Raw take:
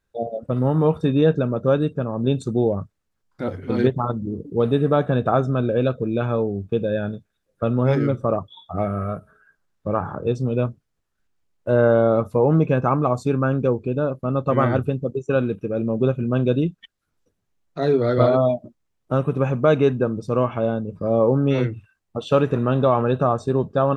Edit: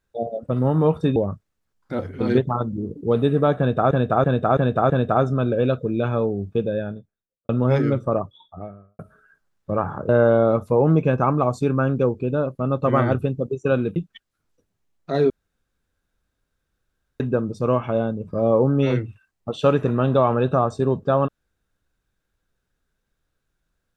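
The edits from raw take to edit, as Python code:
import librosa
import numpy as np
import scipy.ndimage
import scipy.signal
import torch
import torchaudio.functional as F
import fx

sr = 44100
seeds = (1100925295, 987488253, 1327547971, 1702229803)

y = fx.studio_fade_out(x, sr, start_s=6.65, length_s=1.01)
y = fx.studio_fade_out(y, sr, start_s=8.17, length_s=0.99)
y = fx.edit(y, sr, fx.cut(start_s=1.16, length_s=1.49),
    fx.repeat(start_s=5.07, length_s=0.33, count=5),
    fx.cut(start_s=10.26, length_s=1.47),
    fx.cut(start_s=15.6, length_s=1.04),
    fx.room_tone_fill(start_s=17.98, length_s=1.9), tone=tone)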